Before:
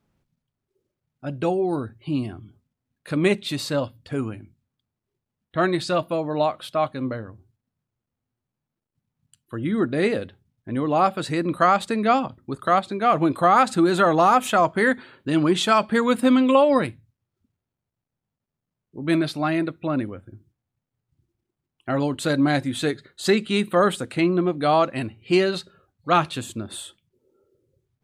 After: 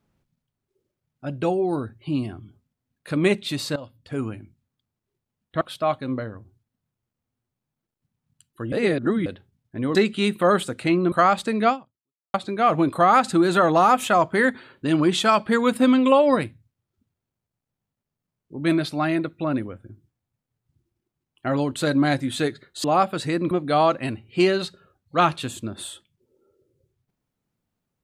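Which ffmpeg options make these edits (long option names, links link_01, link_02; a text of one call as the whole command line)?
ffmpeg -i in.wav -filter_complex "[0:a]asplit=10[link_01][link_02][link_03][link_04][link_05][link_06][link_07][link_08][link_09][link_10];[link_01]atrim=end=3.76,asetpts=PTS-STARTPTS,afade=type=out:start_time=3.756:duration=0.004:curve=hsin:silence=0.149624[link_11];[link_02]atrim=start=3.76:end=5.612,asetpts=PTS-STARTPTS,afade=type=in:duration=0.5:silence=0.149624[link_12];[link_03]atrim=start=6.538:end=9.652[link_13];[link_04]atrim=start=9.648:end=10.192,asetpts=PTS-STARTPTS,areverse[link_14];[link_05]atrim=start=10.188:end=10.882[link_15];[link_06]atrim=start=23.268:end=24.442[link_16];[link_07]atrim=start=11.548:end=12.77,asetpts=PTS-STARTPTS,afade=type=out:start_time=0.572:duration=0.65:curve=exp[link_17];[link_08]atrim=start=12.77:end=23.272,asetpts=PTS-STARTPTS,afade=type=in:duration=0.004:curve=hsin[link_18];[link_09]atrim=start=10.878:end=11.552[link_19];[link_10]atrim=start=24.438[link_20];[link_11][link_12]concat=n=2:v=0:a=1[link_21];[link_21][link_13]acrossfade=duration=0.004:curve1=hsin:curve2=hsin[link_22];[link_22][link_14]acrossfade=duration=0.004:curve1=hsin:curve2=hsin[link_23];[link_23][link_15]acrossfade=duration=0.004:curve1=hsin:curve2=hsin[link_24];[link_24][link_16]acrossfade=duration=0.004:curve1=hsin:curve2=hsin[link_25];[link_17][link_18]concat=n=2:v=0:a=1[link_26];[link_25][link_26]acrossfade=duration=0.004:curve1=hsin:curve2=hsin[link_27];[link_27][link_19]acrossfade=duration=0.004:curve1=hsin:curve2=hsin[link_28];[link_28][link_20]acrossfade=duration=0.004:curve1=hsin:curve2=hsin" out.wav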